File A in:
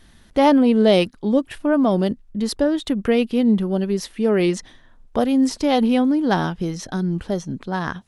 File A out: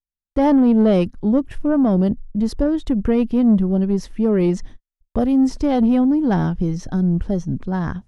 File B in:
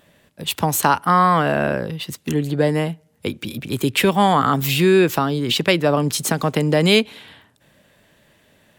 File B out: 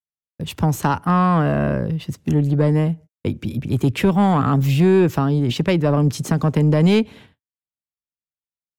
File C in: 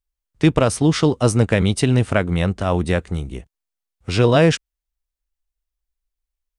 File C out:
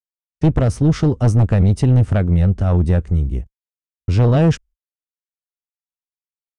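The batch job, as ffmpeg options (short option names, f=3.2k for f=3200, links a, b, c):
-af "aexciter=amount=1.7:drive=8.4:freq=5.3k,agate=range=-59dB:threshold=-40dB:ratio=16:detection=peak,aemphasis=mode=reproduction:type=riaa,acontrast=21,volume=-8dB"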